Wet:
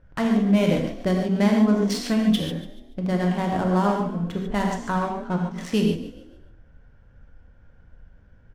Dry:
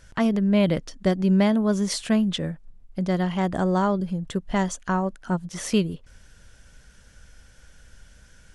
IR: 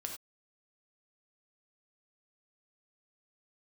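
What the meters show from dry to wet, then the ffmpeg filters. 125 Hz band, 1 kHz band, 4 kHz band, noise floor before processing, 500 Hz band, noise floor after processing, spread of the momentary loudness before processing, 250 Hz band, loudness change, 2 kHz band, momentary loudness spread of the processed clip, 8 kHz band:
+0.5 dB, +1.5 dB, +0.5 dB, -53 dBFS, +0.5 dB, -53 dBFS, 10 LU, +1.0 dB, +1.0 dB, +1.0 dB, 9 LU, -4.5 dB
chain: -filter_complex "[0:a]adynamicsmooth=sensitivity=7:basefreq=970,asplit=5[a][b][c][d][e];[b]adelay=144,afreqshift=40,volume=-15dB[f];[c]adelay=288,afreqshift=80,volume=-23dB[g];[d]adelay=432,afreqshift=120,volume=-30.9dB[h];[e]adelay=576,afreqshift=160,volume=-38.9dB[i];[a][f][g][h][i]amix=inputs=5:normalize=0[j];[1:a]atrim=start_sample=2205,asetrate=30429,aresample=44100[k];[j][k]afir=irnorm=-1:irlink=0"

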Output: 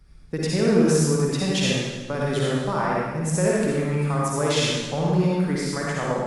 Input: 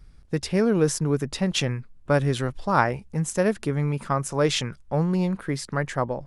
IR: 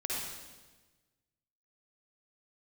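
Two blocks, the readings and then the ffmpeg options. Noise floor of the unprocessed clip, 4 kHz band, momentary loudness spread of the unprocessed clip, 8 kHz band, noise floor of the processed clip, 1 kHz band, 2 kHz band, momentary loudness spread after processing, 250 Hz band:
-51 dBFS, +3.5 dB, 6 LU, +3.5 dB, -40 dBFS, -0.5 dB, +1.0 dB, 7 LU, +3.0 dB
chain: -filter_complex "[0:a]acrossover=split=120[a][b];[a]acompressor=threshold=-48dB:ratio=6[c];[b]alimiter=limit=-14.5dB:level=0:latency=1[d];[c][d]amix=inputs=2:normalize=0[e];[1:a]atrim=start_sample=2205[f];[e][f]afir=irnorm=-1:irlink=0"

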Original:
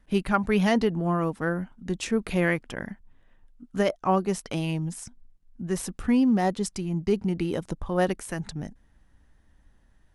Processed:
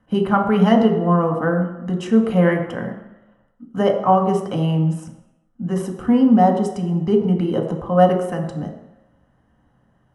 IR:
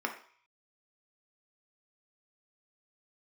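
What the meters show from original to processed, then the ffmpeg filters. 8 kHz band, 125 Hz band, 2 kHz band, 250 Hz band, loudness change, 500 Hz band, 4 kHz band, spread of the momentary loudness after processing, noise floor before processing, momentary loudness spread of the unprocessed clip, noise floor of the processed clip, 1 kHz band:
n/a, +9.0 dB, +1.5 dB, +8.5 dB, +8.5 dB, +9.0 dB, +3.0 dB, 14 LU, -61 dBFS, 14 LU, -62 dBFS, +10.5 dB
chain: -filter_complex "[0:a]highshelf=f=5.5k:g=-5.5[a];[1:a]atrim=start_sample=2205,asetrate=24696,aresample=44100[b];[a][b]afir=irnorm=-1:irlink=0,volume=-2dB"

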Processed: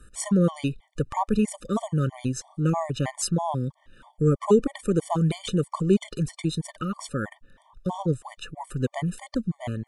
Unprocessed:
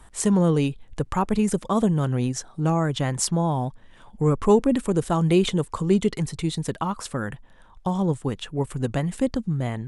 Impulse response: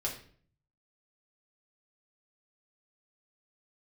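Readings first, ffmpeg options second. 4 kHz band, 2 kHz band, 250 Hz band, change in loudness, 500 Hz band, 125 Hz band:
-4.0 dB, -3.5 dB, -3.0 dB, -3.0 dB, -3.0 dB, -2.5 dB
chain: -af "afftfilt=real='re*gt(sin(2*PI*3.1*pts/sr)*(1-2*mod(floor(b*sr/1024/600),2)),0)':imag='im*gt(sin(2*PI*3.1*pts/sr)*(1-2*mod(floor(b*sr/1024/600),2)),0)':win_size=1024:overlap=0.75"

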